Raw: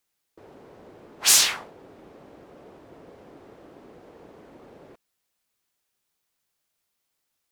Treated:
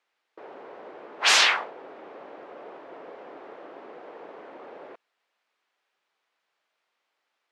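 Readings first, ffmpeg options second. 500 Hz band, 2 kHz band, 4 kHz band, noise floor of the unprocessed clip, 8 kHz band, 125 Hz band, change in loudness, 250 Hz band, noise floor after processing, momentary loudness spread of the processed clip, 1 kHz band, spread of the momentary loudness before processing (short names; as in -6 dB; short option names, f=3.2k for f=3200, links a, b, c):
+6.0 dB, +7.5 dB, +0.5 dB, -79 dBFS, -9.5 dB, under -10 dB, -1.0 dB, -0.5 dB, -80 dBFS, 9 LU, +8.5 dB, 13 LU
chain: -af "highpass=500,lowpass=2.6k,volume=9dB"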